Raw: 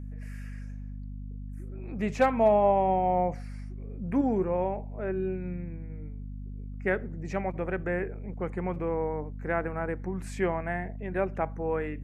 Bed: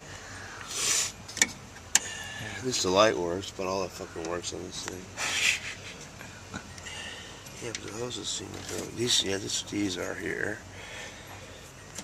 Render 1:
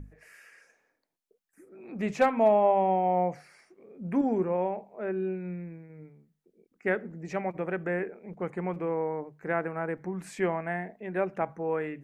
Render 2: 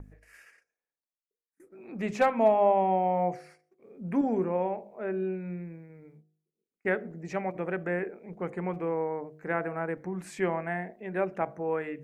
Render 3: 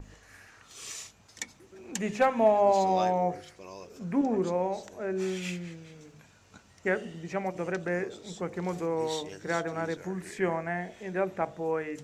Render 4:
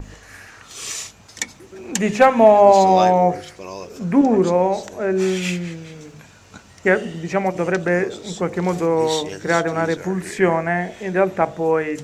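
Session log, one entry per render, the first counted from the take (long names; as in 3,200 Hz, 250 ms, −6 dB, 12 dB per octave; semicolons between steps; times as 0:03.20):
mains-hum notches 50/100/150/200/250 Hz
noise gate −54 dBFS, range −24 dB; hum removal 51.85 Hz, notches 14
mix in bed −14.5 dB
level +12 dB; brickwall limiter −1 dBFS, peak gain reduction 1.5 dB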